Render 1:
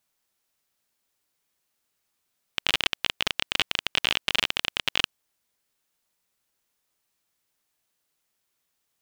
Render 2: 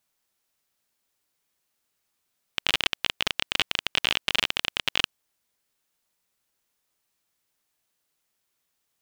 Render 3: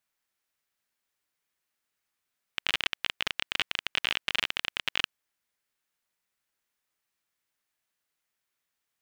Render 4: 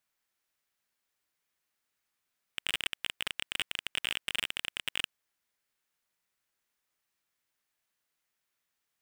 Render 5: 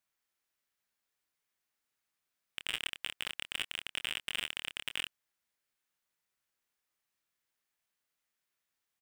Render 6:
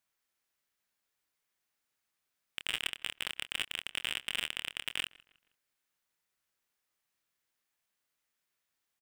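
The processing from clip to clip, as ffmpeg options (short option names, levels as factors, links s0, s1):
-af anull
-af "equalizer=f=1800:w=1:g=6,volume=0.422"
-af "volume=8.41,asoftclip=hard,volume=0.119"
-filter_complex "[0:a]asplit=2[s0][s1];[s1]adelay=26,volume=0.299[s2];[s0][s2]amix=inputs=2:normalize=0,volume=0.668"
-filter_complex "[0:a]asplit=2[s0][s1];[s1]adelay=158,lowpass=f=3100:p=1,volume=0.075,asplit=2[s2][s3];[s3]adelay=158,lowpass=f=3100:p=1,volume=0.41,asplit=2[s4][s5];[s5]adelay=158,lowpass=f=3100:p=1,volume=0.41[s6];[s0][s2][s4][s6]amix=inputs=4:normalize=0,volume=1.19"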